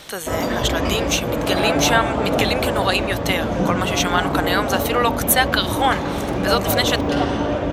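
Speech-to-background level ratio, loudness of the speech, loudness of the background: 0.5 dB, -21.5 LUFS, -22.0 LUFS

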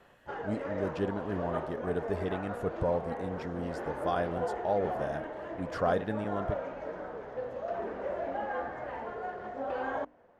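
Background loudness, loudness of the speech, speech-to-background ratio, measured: -37.5 LUFS, -35.0 LUFS, 2.5 dB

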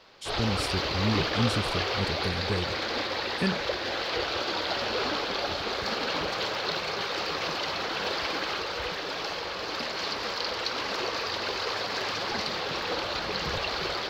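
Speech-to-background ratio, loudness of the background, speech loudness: -3.0 dB, -29.5 LUFS, -32.5 LUFS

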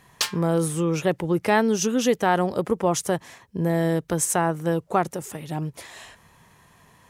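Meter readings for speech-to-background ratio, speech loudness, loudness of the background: 3.5 dB, -24.0 LUFS, -27.5 LUFS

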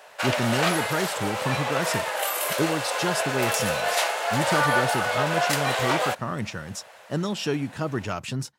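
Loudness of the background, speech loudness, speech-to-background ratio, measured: -25.0 LUFS, -29.5 LUFS, -4.5 dB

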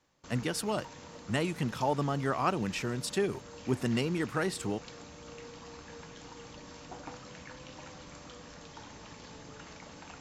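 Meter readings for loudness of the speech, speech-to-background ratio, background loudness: -32.5 LUFS, 15.5 dB, -48.0 LUFS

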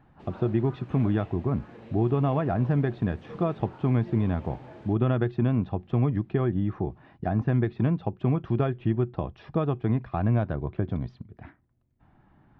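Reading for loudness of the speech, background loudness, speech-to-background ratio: -27.5 LUFS, -47.0 LUFS, 19.5 dB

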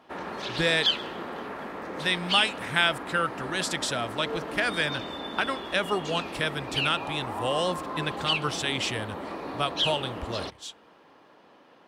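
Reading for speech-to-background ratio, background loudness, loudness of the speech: 4.0 dB, -32.5 LUFS, -28.5 LUFS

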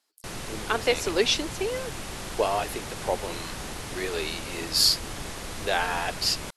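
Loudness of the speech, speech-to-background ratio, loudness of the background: -27.0 LUFS, 9.0 dB, -36.0 LUFS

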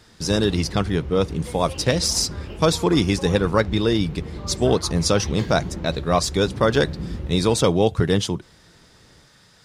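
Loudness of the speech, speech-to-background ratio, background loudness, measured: -21.5 LUFS, 12.0 dB, -33.5 LUFS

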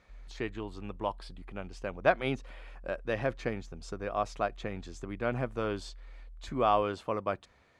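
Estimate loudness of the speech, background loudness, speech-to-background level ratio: -34.0 LUFS, -53.5 LUFS, 19.5 dB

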